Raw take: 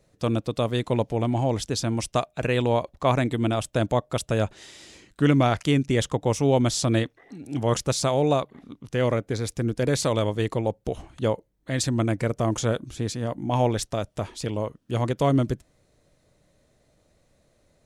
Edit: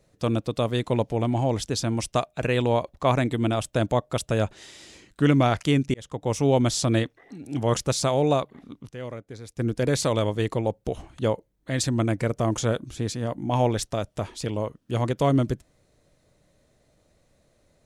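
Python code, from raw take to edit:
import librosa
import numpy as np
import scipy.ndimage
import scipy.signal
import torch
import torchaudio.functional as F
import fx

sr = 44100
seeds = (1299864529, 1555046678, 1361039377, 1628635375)

y = fx.edit(x, sr, fx.fade_in_span(start_s=5.94, length_s=0.47),
    fx.fade_down_up(start_s=8.89, length_s=0.71, db=-12.5, fade_s=0.13, curve='exp'), tone=tone)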